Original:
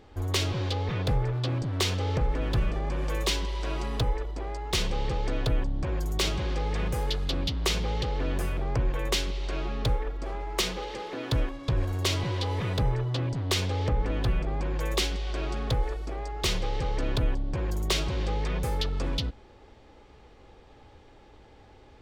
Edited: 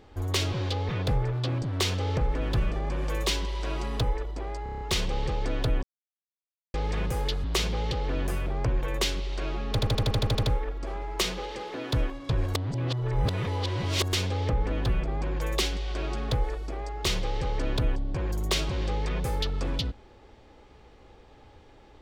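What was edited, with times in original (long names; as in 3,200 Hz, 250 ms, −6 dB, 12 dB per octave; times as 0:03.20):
0:04.63: stutter 0.03 s, 7 plays
0:05.65–0:06.56: silence
0:07.26–0:07.55: remove
0:09.82: stutter 0.08 s, 10 plays
0:11.94–0:13.52: reverse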